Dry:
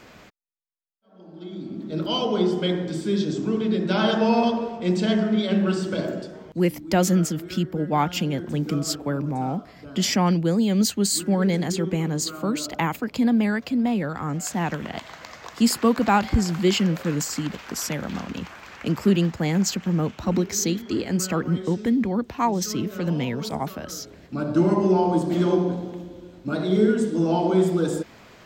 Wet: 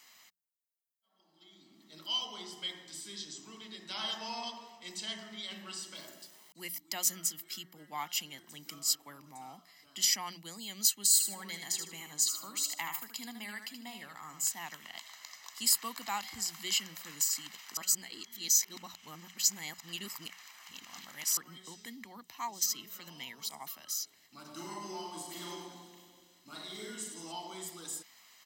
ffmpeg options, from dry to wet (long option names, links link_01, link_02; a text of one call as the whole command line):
ffmpeg -i in.wav -filter_complex "[0:a]asettb=1/sr,asplit=3[link_01][link_02][link_03];[link_01]atrim=end=5.964[link_04];[link_02]atrim=start=5.96:end=6.55,asetpts=PTS-STARTPTS,afade=type=in:duration=0.004:curve=qsin,afade=type=out:start_time=0.586:duration=0.004:curve=qsin,aeval=exprs='val(0)*gte(abs(val(0)),0.00473)':channel_layout=same[link_05];[link_03]atrim=start=6.546[link_06];[link_04][link_05]acrossfade=duration=0.004:curve1=hsin:curve2=qsin[link_07];[link_07][link_06]acrossfade=duration=0.004:curve1=qsin:curve2=hsin,asettb=1/sr,asplit=3[link_08][link_09][link_10];[link_08]atrim=end=11.124[link_11];[link_09]atrim=start=11.12:end=14.48,asetpts=PTS-STARTPTS,afade=type=in:duration=0.004:curve=qsin,afade=type=out:start_time=3.356:duration=0.004:curve=qsin,aecho=1:1:77|154|231:0.422|0.114|0.0307,atrim=end_sample=148176[link_12];[link_10]atrim=start=14.476[link_13];[link_11][link_12]acrossfade=duration=0.004:curve1=hsin:curve2=qsin[link_14];[link_14][link_13]acrossfade=duration=0.004:curve1=qsin:curve2=hsin,asplit=3[link_15][link_16][link_17];[link_15]afade=type=out:start_time=24.44:duration=0.02[link_18];[link_16]aecho=1:1:40|96|174.4|284.2|437.8|653:0.631|0.398|0.251|0.158|0.1|0.0631,afade=type=in:start_time=24.44:duration=0.02,afade=type=out:start_time=27.31:duration=0.02[link_19];[link_17]afade=type=in:start_time=27.31:duration=0.02[link_20];[link_18][link_19][link_20]amix=inputs=3:normalize=0,asplit=3[link_21][link_22][link_23];[link_21]atrim=end=17.772[link_24];[link_22]atrim=start=17.768:end=21.372,asetpts=PTS-STARTPTS,areverse[link_25];[link_23]atrim=start=21.368[link_26];[link_24][link_25]acrossfade=duration=0.004:curve1=hsin:curve2=hsin[link_27];[link_27][link_26]acrossfade=duration=0.004:curve1=hsin:curve2=hsin,aderivative,bandreject=frequency=60:width_type=h:width=6,bandreject=frequency=120:width_type=h:width=6,bandreject=frequency=180:width_type=h:width=6,aecho=1:1:1:0.57,volume=-1dB" out.wav